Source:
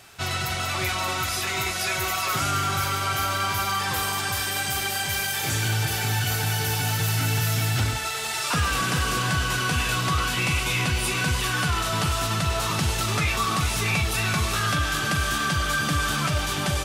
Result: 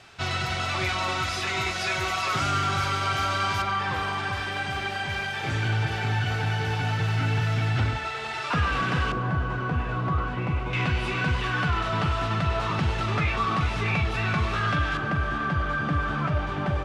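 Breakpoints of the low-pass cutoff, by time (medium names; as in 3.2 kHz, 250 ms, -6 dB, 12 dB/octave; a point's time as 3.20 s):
4.8 kHz
from 3.62 s 2.6 kHz
from 9.12 s 1.1 kHz
from 10.73 s 2.5 kHz
from 14.97 s 1.5 kHz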